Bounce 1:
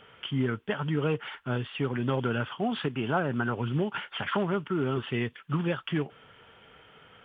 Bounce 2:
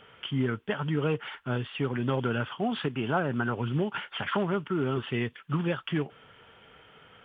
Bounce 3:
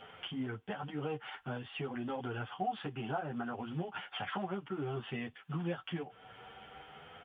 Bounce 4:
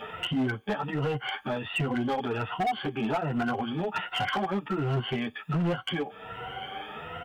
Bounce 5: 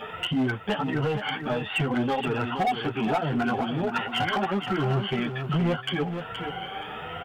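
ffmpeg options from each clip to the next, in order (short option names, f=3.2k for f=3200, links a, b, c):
-af anull
-filter_complex "[0:a]equalizer=f=760:w=7.2:g=14.5,acompressor=threshold=-44dB:ratio=2,asplit=2[a][b];[b]adelay=9.5,afreqshift=0.55[c];[a][c]amix=inputs=2:normalize=1,volume=3dB"
-filter_complex "[0:a]afftfilt=real='re*pow(10,15/40*sin(2*PI*(2*log(max(b,1)*sr/1024/100)/log(2)-(1.3)*(pts-256)/sr)))':imag='im*pow(10,15/40*sin(2*PI*(2*log(max(b,1)*sr/1024/100)/log(2)-(1.3)*(pts-256)/sr)))':win_size=1024:overlap=0.75,asplit=2[a][b];[b]acompressor=threshold=-42dB:ratio=6,volume=-1.5dB[c];[a][c]amix=inputs=2:normalize=0,asoftclip=type=hard:threshold=-29.5dB,volume=6dB"
-af "aecho=1:1:472|944|1416:0.398|0.0836|0.0176,volume=2.5dB"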